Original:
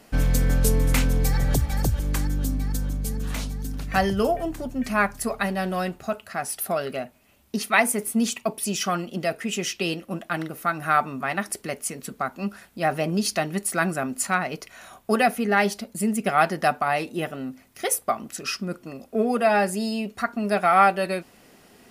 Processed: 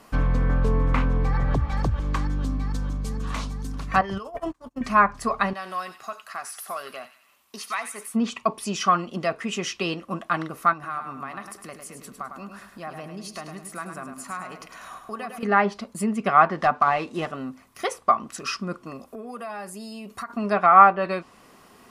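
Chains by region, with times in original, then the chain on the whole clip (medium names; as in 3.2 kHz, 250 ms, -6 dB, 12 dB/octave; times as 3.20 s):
4.01–4.81 s: gate -29 dBFS, range -35 dB + bass shelf 360 Hz -7.5 dB + compressor with a negative ratio -30 dBFS, ratio -0.5
5.53–8.14 s: high-pass 1.1 kHz 6 dB/octave + compression 2:1, threshold -34 dBFS + feedback echo behind a high-pass 90 ms, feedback 47%, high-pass 2 kHz, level -8.5 dB
10.73–15.43 s: compression 2.5:1, threshold -40 dBFS + feedback delay 104 ms, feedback 37%, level -7 dB
16.49–17.32 s: CVSD coder 64 kbps + tape noise reduction on one side only encoder only
19.07–20.30 s: treble shelf 8.1 kHz +9 dB + compression, threshold -34 dBFS
whole clip: low-pass that closes with the level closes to 2 kHz, closed at -16.5 dBFS; peaking EQ 1.1 kHz +13.5 dB 0.4 oct; trim -1 dB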